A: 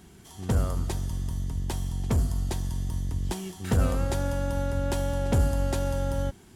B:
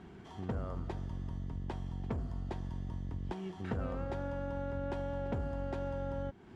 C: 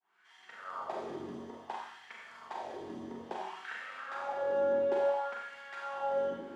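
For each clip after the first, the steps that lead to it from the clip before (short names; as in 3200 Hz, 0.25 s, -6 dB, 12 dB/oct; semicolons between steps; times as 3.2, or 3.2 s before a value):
Bessel low-pass 1700 Hz, order 2; low shelf 120 Hz -8.5 dB; compressor 2.5:1, threshold -42 dBFS, peak gain reduction 13 dB; gain +3 dB
opening faded in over 0.69 s; Schroeder reverb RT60 1.5 s, combs from 30 ms, DRR -4.5 dB; LFO high-pass sine 0.58 Hz 330–1900 Hz; gain -1 dB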